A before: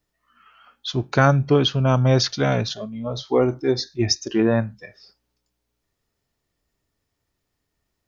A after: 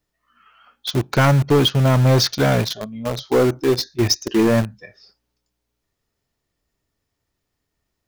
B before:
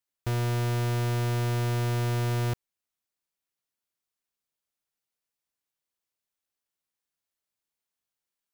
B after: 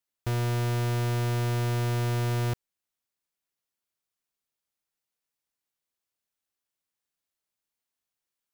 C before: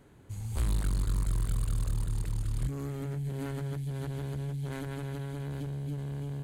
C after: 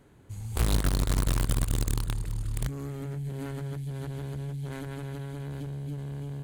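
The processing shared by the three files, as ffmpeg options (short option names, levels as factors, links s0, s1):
-filter_complex "[0:a]asplit=2[s0][s1];[s1]acrusher=bits=3:mix=0:aa=0.000001,volume=0.596[s2];[s0][s2]amix=inputs=2:normalize=0,asoftclip=type=hard:threshold=0.316"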